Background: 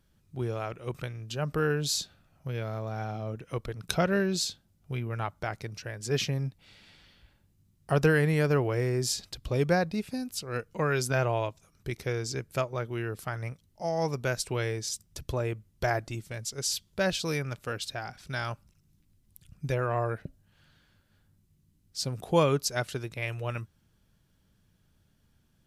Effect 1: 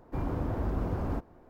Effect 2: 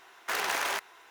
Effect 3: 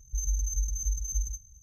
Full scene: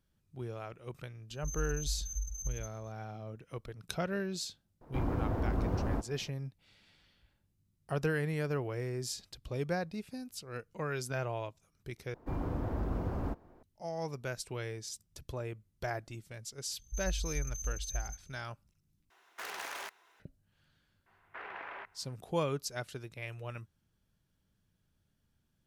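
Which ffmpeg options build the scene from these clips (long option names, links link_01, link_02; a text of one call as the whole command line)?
ffmpeg -i bed.wav -i cue0.wav -i cue1.wav -i cue2.wav -filter_complex "[3:a]asplit=2[link_01][link_02];[1:a]asplit=2[link_03][link_04];[2:a]asplit=2[link_05][link_06];[0:a]volume=-9dB[link_07];[link_06]lowpass=frequency=2400:width=0.5412,lowpass=frequency=2400:width=1.3066[link_08];[link_07]asplit=3[link_09][link_10][link_11];[link_09]atrim=end=12.144[link_12];[link_04]atrim=end=1.49,asetpts=PTS-STARTPTS,volume=-3.5dB[link_13];[link_10]atrim=start=13.626:end=19.104[link_14];[link_05]atrim=end=1.1,asetpts=PTS-STARTPTS,volume=-11.5dB[link_15];[link_11]atrim=start=20.196[link_16];[link_01]atrim=end=1.62,asetpts=PTS-STARTPTS,volume=-7.5dB,afade=type=in:duration=0.004:curve=hsin,afade=type=out:start_time=1.616:duration=0.004:curve=hsin,adelay=1300[link_17];[link_03]atrim=end=1.49,asetpts=PTS-STARTPTS,volume=-1dB,afade=type=in:duration=0.004:curve=hsin,afade=type=out:start_time=1.486:duration=0.004:curve=hsin,adelay=212121S[link_18];[link_02]atrim=end=1.62,asetpts=PTS-STARTPTS,volume=-7dB,afade=type=in:duration=0.004:curve=hsin,afade=type=out:start_time=1.616:duration=0.004:curve=hsin,adelay=16790[link_19];[link_08]atrim=end=1.1,asetpts=PTS-STARTPTS,volume=-13dB,afade=type=in:duration=0.004:curve=hsin,afade=type=out:start_time=1.096:duration=0.004:curve=hsin,adelay=21060[link_20];[link_12][link_13]acrossfade=duration=0.004:curve1=hsin:curve2=hsin[link_21];[link_21][link_14]acrossfade=duration=0.004:curve1=hsin:curve2=hsin[link_22];[link_22][link_15]acrossfade=duration=0.004:curve1=hsin:curve2=hsin[link_23];[link_23][link_16]acrossfade=duration=0.004:curve1=hsin:curve2=hsin[link_24];[link_24][link_17][link_18][link_19][link_20]amix=inputs=5:normalize=0" out.wav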